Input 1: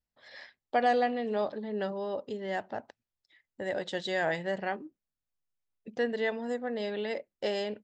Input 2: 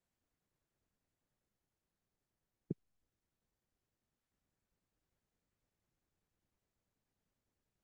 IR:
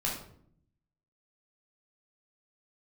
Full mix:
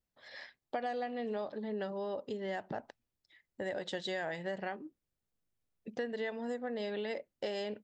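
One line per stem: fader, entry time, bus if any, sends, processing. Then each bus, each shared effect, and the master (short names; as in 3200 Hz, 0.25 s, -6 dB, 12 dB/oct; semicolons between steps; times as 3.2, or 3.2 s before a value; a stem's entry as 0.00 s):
-0.5 dB, 0.00 s, no send, dry
-3.0 dB, 0.00 s, no send, median filter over 41 samples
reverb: off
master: compressor 6:1, threshold -34 dBFS, peak gain reduction 12 dB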